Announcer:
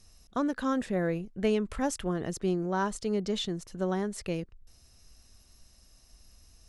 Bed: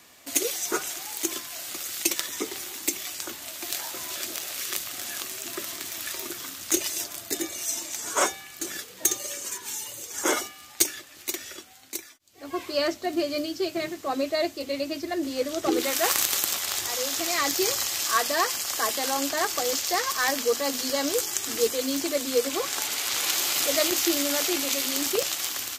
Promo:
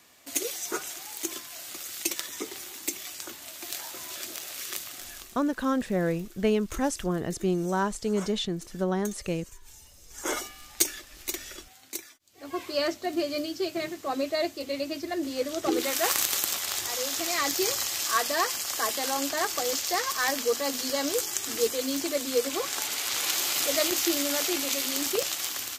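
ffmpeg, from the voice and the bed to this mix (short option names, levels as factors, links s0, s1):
-filter_complex "[0:a]adelay=5000,volume=1.33[s0];[1:a]volume=3.98,afade=t=out:st=4.85:d=0.56:silence=0.199526,afade=t=in:st=10.04:d=0.47:silence=0.149624[s1];[s0][s1]amix=inputs=2:normalize=0"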